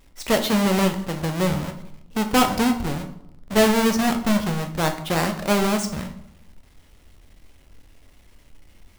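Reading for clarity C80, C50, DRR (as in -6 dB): 13.5 dB, 10.5 dB, 5.0 dB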